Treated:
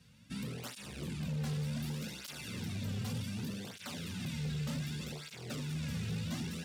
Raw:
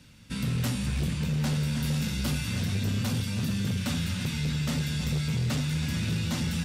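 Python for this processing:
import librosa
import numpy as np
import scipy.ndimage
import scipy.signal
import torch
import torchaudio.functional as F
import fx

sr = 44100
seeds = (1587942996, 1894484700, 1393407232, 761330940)

y = np.clip(x, -10.0 ** (-27.5 / 20.0), 10.0 ** (-27.5 / 20.0))
y = fx.flanger_cancel(y, sr, hz=0.66, depth_ms=3.5)
y = y * librosa.db_to_amplitude(-5.5)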